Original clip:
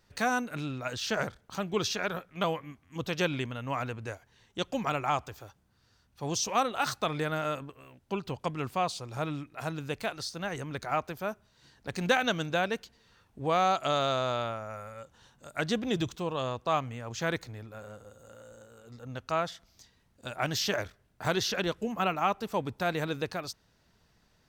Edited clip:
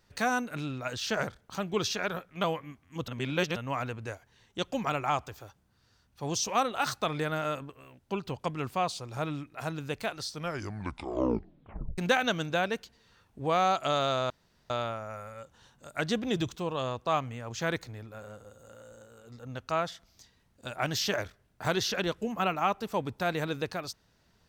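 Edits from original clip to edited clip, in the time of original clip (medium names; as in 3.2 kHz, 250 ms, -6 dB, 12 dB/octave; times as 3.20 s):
3.08–3.56 s: reverse
10.23 s: tape stop 1.75 s
14.30 s: insert room tone 0.40 s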